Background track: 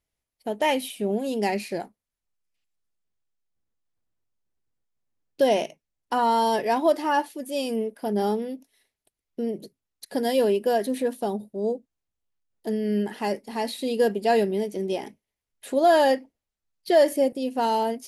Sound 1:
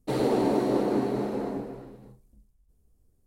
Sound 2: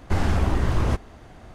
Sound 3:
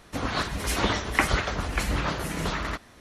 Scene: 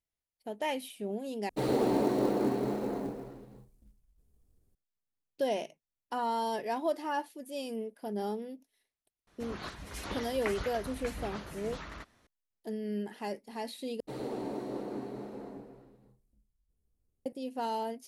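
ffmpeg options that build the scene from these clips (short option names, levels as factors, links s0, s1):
-filter_complex "[1:a]asplit=2[s0][s1];[0:a]volume=0.299[s2];[s0]acrusher=bits=7:mode=log:mix=0:aa=0.000001[s3];[s2]asplit=3[s4][s5][s6];[s4]atrim=end=1.494[s7];[s3]atrim=end=3.26,asetpts=PTS-STARTPTS,volume=0.668[s8];[s5]atrim=start=4.746:end=14.004[s9];[s1]atrim=end=3.26,asetpts=PTS-STARTPTS,volume=0.224[s10];[s6]atrim=start=17.256[s11];[3:a]atrim=end=3,asetpts=PTS-STARTPTS,volume=0.188,afade=t=in:d=0.004:c=hsin,afade=t=out:st=2.996:d=0.004:c=hsin,adelay=9270[s12];[s7][s8]acrossfade=d=0.004:c1=hsin:c2=hsin[s13];[s13][s9]acrossfade=d=0.004:c1=hsin:c2=hsin[s14];[s14][s10]acrossfade=d=0.004:c1=hsin:c2=hsin[s15];[s15][s11]acrossfade=d=0.004:c1=hsin:c2=hsin[s16];[s16][s12]amix=inputs=2:normalize=0"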